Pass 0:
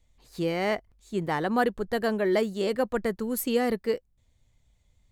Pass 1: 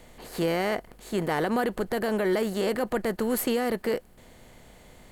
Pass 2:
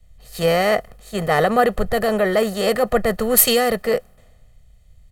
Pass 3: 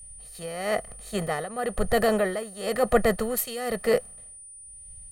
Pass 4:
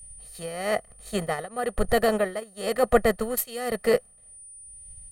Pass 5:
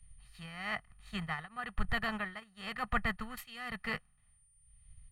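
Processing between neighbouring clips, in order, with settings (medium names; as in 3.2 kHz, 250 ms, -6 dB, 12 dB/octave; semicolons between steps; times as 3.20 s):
spectral levelling over time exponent 0.6; peak limiter -16.5 dBFS, peak gain reduction 7 dB
comb 1.6 ms, depth 72%; three bands expanded up and down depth 100%; trim +7.5 dB
tremolo 1 Hz, depth 86%; whistle 9.3 kHz -41 dBFS; trim -2 dB
transient shaper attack +2 dB, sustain -10 dB
FFT filter 160 Hz 0 dB, 540 Hz -25 dB, 890 Hz -1 dB, 2.7 kHz +2 dB, 8.7 kHz -18 dB; trim -5 dB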